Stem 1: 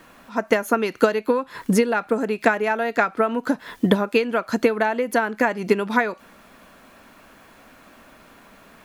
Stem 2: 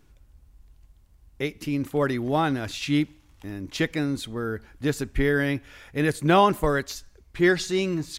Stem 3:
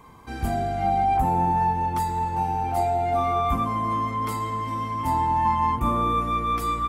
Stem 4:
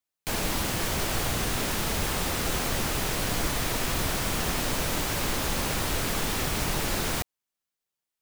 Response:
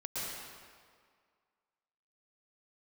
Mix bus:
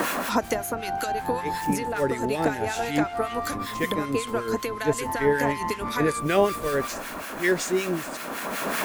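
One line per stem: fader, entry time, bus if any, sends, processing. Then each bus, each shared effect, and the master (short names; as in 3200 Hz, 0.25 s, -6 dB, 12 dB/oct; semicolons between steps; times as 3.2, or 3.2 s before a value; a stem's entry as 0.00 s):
+2.5 dB, 0.00 s, no send, tone controls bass -6 dB, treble +14 dB; three-band squash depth 100%; auto duck -9 dB, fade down 0.70 s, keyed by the second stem
-2.5 dB, 0.00 s, no send, graphic EQ 500/1000/2000/4000/8000 Hz +10/-9/+7/-5/+11 dB; attack slew limiter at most 400 dB/s
-4.0 dB, 0.00 s, no send, self-modulated delay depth 0.17 ms; low shelf 130 Hz -10.5 dB
-16.5 dB, 0.00 s, no send, Bessel low-pass 3100 Hz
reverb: off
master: harmonic tremolo 5.3 Hz, depth 70%, crossover 1300 Hz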